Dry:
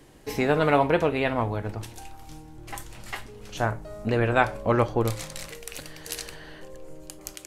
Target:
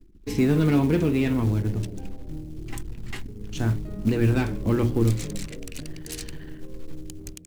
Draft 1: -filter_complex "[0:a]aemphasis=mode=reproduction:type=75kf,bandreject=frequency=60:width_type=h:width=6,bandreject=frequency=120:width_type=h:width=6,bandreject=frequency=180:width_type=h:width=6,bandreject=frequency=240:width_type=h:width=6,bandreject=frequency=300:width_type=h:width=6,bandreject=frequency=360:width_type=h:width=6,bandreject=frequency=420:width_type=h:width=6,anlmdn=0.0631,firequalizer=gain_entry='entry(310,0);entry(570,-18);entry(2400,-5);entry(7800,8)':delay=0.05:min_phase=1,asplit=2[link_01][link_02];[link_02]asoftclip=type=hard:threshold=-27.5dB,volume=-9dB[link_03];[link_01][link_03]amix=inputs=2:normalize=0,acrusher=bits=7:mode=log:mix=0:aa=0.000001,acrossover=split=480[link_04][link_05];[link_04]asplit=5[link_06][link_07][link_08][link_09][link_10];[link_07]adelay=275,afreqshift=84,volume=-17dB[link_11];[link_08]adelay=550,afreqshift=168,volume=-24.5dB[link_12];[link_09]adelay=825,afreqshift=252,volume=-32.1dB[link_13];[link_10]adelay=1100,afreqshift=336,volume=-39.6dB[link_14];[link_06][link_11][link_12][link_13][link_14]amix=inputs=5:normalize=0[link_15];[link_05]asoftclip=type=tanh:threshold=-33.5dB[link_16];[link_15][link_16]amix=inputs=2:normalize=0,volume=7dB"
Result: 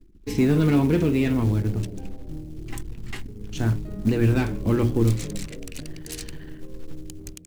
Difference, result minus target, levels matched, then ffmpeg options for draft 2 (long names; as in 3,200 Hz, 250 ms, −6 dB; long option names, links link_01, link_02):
hard clipping: distortion −7 dB
-filter_complex "[0:a]aemphasis=mode=reproduction:type=75kf,bandreject=frequency=60:width_type=h:width=6,bandreject=frequency=120:width_type=h:width=6,bandreject=frequency=180:width_type=h:width=6,bandreject=frequency=240:width_type=h:width=6,bandreject=frequency=300:width_type=h:width=6,bandreject=frequency=360:width_type=h:width=6,bandreject=frequency=420:width_type=h:width=6,anlmdn=0.0631,firequalizer=gain_entry='entry(310,0);entry(570,-18);entry(2400,-5);entry(7800,8)':delay=0.05:min_phase=1,asplit=2[link_01][link_02];[link_02]asoftclip=type=hard:threshold=-37.5dB,volume=-9dB[link_03];[link_01][link_03]amix=inputs=2:normalize=0,acrusher=bits=7:mode=log:mix=0:aa=0.000001,acrossover=split=480[link_04][link_05];[link_04]asplit=5[link_06][link_07][link_08][link_09][link_10];[link_07]adelay=275,afreqshift=84,volume=-17dB[link_11];[link_08]adelay=550,afreqshift=168,volume=-24.5dB[link_12];[link_09]adelay=825,afreqshift=252,volume=-32.1dB[link_13];[link_10]adelay=1100,afreqshift=336,volume=-39.6dB[link_14];[link_06][link_11][link_12][link_13][link_14]amix=inputs=5:normalize=0[link_15];[link_05]asoftclip=type=tanh:threshold=-33.5dB[link_16];[link_15][link_16]amix=inputs=2:normalize=0,volume=7dB"